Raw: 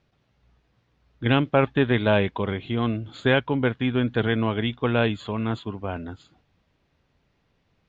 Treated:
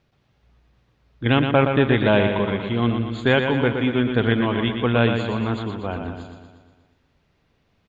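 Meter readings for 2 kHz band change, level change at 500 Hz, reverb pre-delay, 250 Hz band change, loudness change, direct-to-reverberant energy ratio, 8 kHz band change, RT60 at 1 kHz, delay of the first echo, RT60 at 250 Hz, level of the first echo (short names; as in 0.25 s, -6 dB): +3.5 dB, +3.5 dB, none, +3.5 dB, +3.5 dB, none, n/a, none, 0.119 s, none, -6.5 dB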